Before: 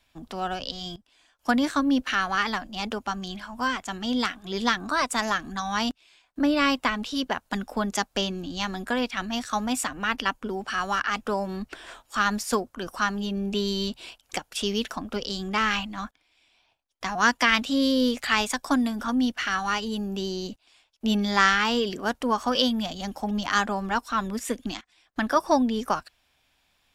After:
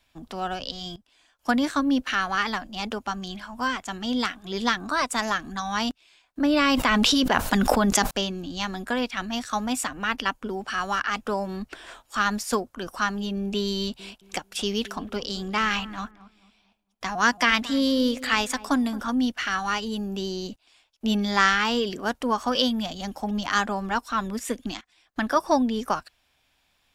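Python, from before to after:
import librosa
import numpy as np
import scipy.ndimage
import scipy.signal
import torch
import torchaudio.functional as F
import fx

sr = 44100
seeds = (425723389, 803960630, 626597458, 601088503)

y = fx.env_flatten(x, sr, amount_pct=100, at=(6.45, 8.11))
y = fx.echo_filtered(y, sr, ms=222, feedback_pct=37, hz=940.0, wet_db=-16.0, at=(13.77, 19.01))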